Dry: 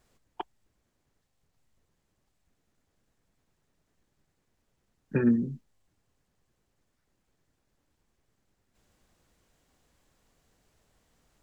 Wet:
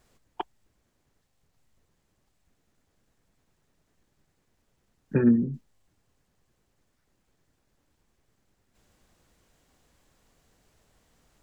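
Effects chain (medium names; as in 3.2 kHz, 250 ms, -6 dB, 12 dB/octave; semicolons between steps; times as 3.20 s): 5.14–5.54 s: treble shelf 2.3 kHz -11 dB; trim +3.5 dB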